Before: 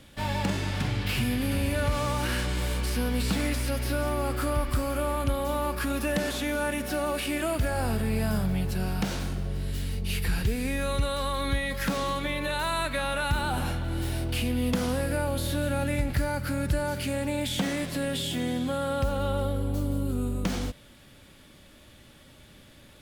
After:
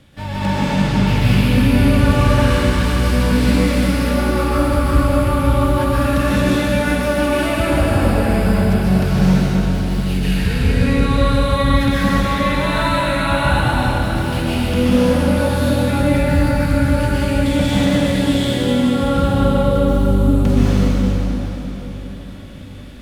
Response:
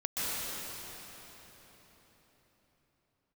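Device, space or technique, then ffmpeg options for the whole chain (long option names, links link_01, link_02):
swimming-pool hall: -filter_complex "[0:a]asettb=1/sr,asplit=3[link_01][link_02][link_03];[link_01]atrim=end=10.204[link_04];[link_02]atrim=start=10.2:end=11.12,asetpts=PTS-STARTPTS,afade=type=in:duration=0.004:curve=qsin,afade=type=out:start_time=0.916:duration=0.004:curve=qsin,lowpass=8300[link_05];[link_03]atrim=start=11.116[link_06];[link_04][link_05]acrossfade=duration=0.004:curve1=hsin:curve2=qsin[link_07];[link_07][link_06]acrossfade=duration=0.004:curve1=qsin:curve2=hsin[link_08];[1:a]atrim=start_sample=2205[link_09];[link_08][link_09]afir=irnorm=-1:irlink=0,equalizer=frequency=120:width=0.9:gain=5,highshelf=frequency=5800:gain=-7,volume=3dB"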